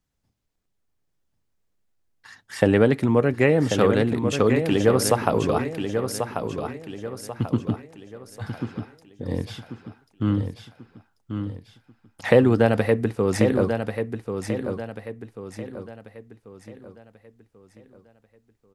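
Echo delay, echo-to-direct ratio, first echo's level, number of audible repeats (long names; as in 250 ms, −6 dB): 1,089 ms, −6.0 dB, −7.0 dB, 4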